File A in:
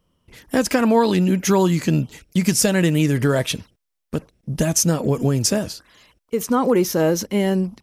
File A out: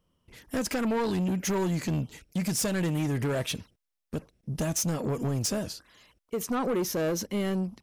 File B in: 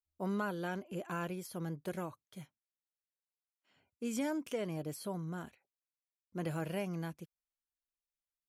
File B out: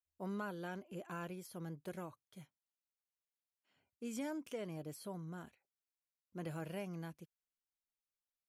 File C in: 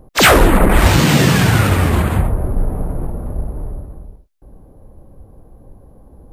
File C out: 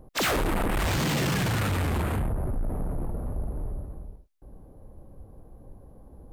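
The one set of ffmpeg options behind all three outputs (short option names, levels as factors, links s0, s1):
-af "asoftclip=type=tanh:threshold=0.133,volume=0.501"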